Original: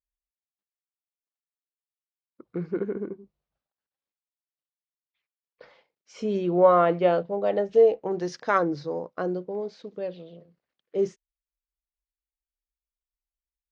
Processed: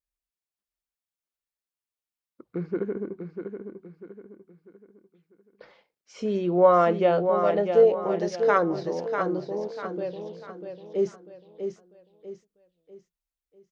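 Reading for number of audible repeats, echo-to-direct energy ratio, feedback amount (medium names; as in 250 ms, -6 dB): 4, -6.5 dB, 38%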